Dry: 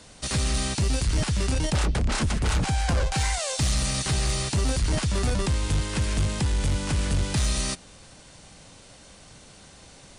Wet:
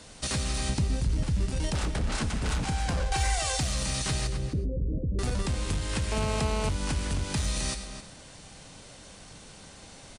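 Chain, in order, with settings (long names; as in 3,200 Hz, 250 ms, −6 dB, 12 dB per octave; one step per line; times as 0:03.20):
0:00.69–0:01.46: low-shelf EQ 390 Hz +11 dB
0:04.27–0:05.19: Chebyshev low-pass filter 520 Hz, order 5
reverb whose tail is shaped and stops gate 140 ms flat, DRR 10 dB
downward compressor 4 to 1, threshold −27 dBFS, peak gain reduction 14.5 dB
0:03.10–0:03.58: comb filter 2.6 ms, depth 74%
slap from a distant wall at 45 metres, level −9 dB
0:06.12–0:06.69: phone interference −32 dBFS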